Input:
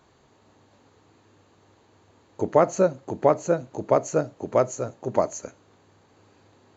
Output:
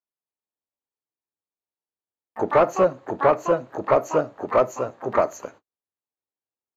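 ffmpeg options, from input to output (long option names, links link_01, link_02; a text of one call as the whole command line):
ffmpeg -i in.wav -filter_complex "[0:a]agate=range=-47dB:threshold=-47dB:ratio=16:detection=peak,asplit=2[link_01][link_02];[link_02]asetrate=88200,aresample=44100,atempo=0.5,volume=-10dB[link_03];[link_01][link_03]amix=inputs=2:normalize=0,asplit=2[link_04][link_05];[link_05]highpass=frequency=720:poles=1,volume=14dB,asoftclip=type=tanh:threshold=-3.5dB[link_06];[link_04][link_06]amix=inputs=2:normalize=0,lowpass=frequency=1200:poles=1,volume=-6dB,volume=-1dB" out.wav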